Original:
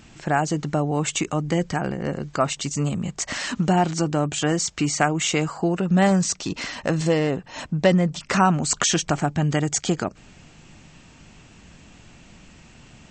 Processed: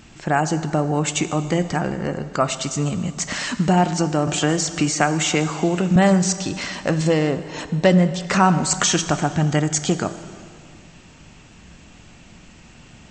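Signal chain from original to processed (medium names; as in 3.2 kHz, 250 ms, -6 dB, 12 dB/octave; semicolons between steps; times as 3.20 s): plate-style reverb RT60 2.2 s, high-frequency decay 0.85×, DRR 10.5 dB; 4.27–5.96 s: three bands compressed up and down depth 40%; trim +2 dB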